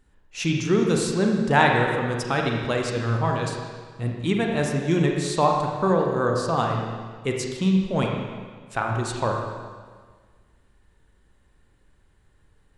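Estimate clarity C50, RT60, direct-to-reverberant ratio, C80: 2.5 dB, 1.6 s, 0.5 dB, 3.5 dB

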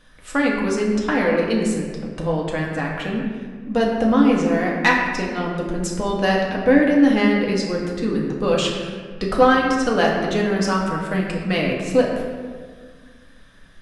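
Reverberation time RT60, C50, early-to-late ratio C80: 1.7 s, 2.5 dB, 3.5 dB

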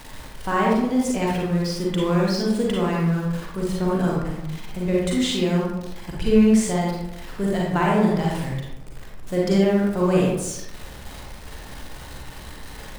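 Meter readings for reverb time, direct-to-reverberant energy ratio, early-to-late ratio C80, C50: 0.90 s, -4.0 dB, 3.0 dB, -1.0 dB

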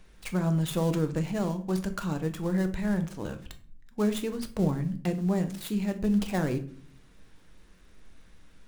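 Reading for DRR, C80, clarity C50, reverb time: 7.0 dB, 18.0 dB, 14.0 dB, 0.50 s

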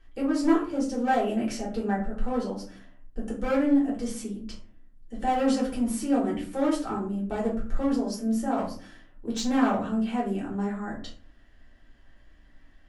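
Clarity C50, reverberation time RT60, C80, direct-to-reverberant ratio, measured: 7.0 dB, 0.50 s, 12.0 dB, -5.5 dB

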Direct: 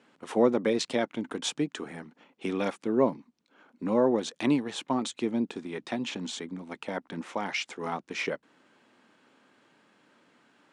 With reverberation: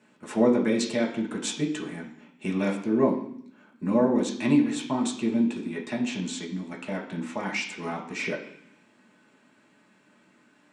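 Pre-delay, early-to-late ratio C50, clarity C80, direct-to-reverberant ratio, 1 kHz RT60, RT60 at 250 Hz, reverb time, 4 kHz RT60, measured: 3 ms, 8.0 dB, 11.5 dB, -2.0 dB, 0.65 s, 1.0 s, 0.65 s, 0.85 s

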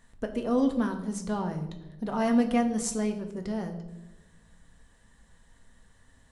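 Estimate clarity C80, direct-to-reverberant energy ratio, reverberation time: 12.5 dB, 4.0 dB, 1.0 s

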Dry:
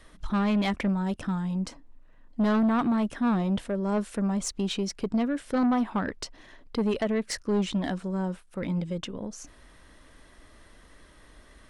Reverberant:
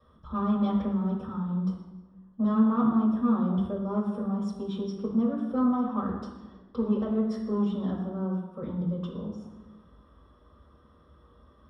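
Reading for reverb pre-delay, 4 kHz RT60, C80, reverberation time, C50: 3 ms, 0.85 s, 6.0 dB, 1.2 s, 3.0 dB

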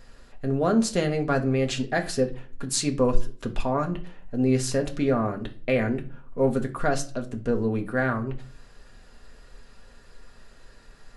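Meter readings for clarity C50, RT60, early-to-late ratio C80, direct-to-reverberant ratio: 14.5 dB, 0.40 s, 20.5 dB, 2.5 dB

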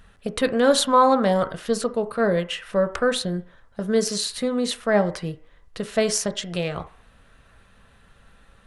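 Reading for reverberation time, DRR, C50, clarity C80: 0.45 s, 8.0 dB, 15.0 dB, 19.0 dB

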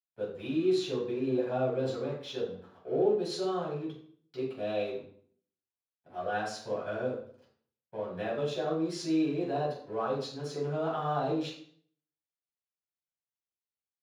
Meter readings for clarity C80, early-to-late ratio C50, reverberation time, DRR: 8.5 dB, 4.0 dB, 0.55 s, -6.0 dB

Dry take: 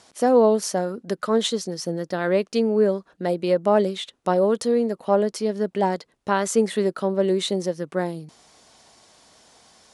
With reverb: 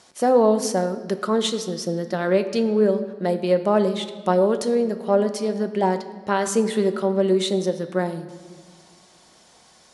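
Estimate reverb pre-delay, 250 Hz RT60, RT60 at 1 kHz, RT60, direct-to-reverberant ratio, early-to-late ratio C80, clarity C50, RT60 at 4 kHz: 5 ms, 2.5 s, 1.5 s, 1.6 s, 8.0 dB, 13.0 dB, 11.5 dB, 1.2 s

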